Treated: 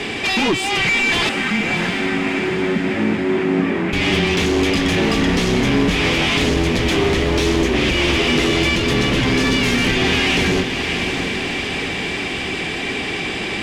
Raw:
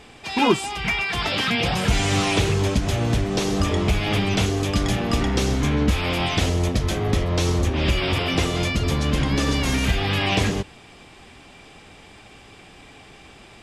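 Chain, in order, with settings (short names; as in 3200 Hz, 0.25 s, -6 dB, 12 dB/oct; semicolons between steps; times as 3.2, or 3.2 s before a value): band shelf 910 Hz -10 dB; compressor 3:1, threshold -33 dBFS, peak gain reduction 14.5 dB; overdrive pedal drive 38 dB, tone 1300 Hz, clips at -0.5 dBFS; soft clip -13.5 dBFS, distortion -15 dB; frequency shift -19 Hz; 1.29–3.93 speaker cabinet 200–2100 Hz, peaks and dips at 210 Hz +8 dB, 450 Hz -7 dB, 690 Hz -4 dB, 1100 Hz -5 dB; diffused feedback echo 0.678 s, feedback 57%, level -7 dB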